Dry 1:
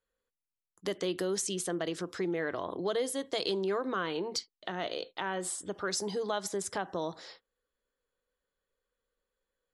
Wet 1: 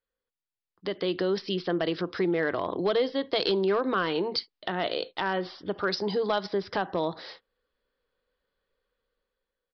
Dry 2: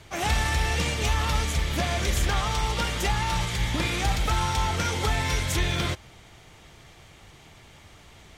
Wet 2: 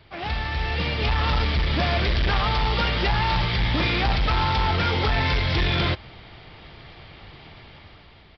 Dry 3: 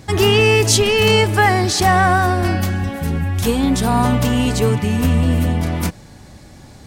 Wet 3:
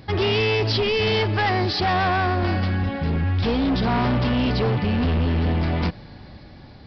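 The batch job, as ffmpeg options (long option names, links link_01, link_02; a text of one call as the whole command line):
ffmpeg -i in.wav -af "dynaudnorm=framelen=270:gausssize=7:maxgain=10dB,aresample=11025,asoftclip=type=hard:threshold=-14.5dB,aresample=44100,volume=-3.5dB" out.wav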